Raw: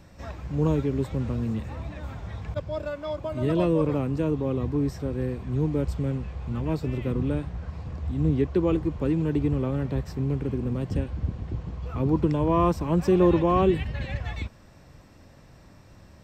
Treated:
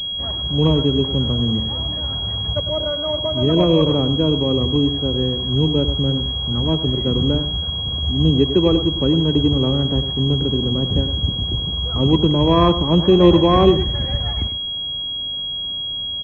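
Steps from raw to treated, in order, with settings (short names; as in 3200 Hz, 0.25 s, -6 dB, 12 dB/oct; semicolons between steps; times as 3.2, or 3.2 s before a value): Wiener smoothing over 9 samples; vibrato 1.1 Hz 7 cents; echo 0.101 s -11 dB; on a send at -18 dB: reverb, pre-delay 3 ms; on the sum: pulse-width modulation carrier 3300 Hz; gain +7.5 dB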